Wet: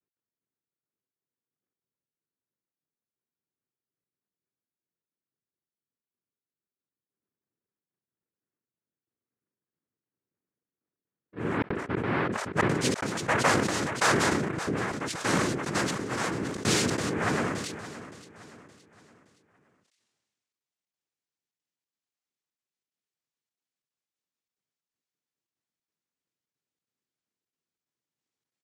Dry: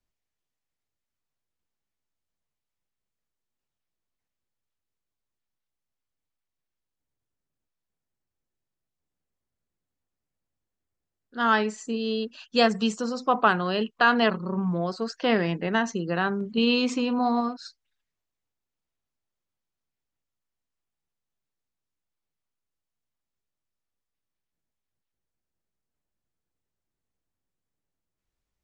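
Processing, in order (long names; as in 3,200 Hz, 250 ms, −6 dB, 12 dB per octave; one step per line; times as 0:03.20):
low-pass filter sweep 380 Hz → 5,100 Hz, 0:12.13–0:13.04
cochlear-implant simulation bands 3
gate pattern "x.xxxxxxx.xx" 182 BPM −60 dB
on a send: repeating echo 569 ms, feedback 40%, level −15 dB
on the sum: level that may fall only so fast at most 34 dB per second
level −4.5 dB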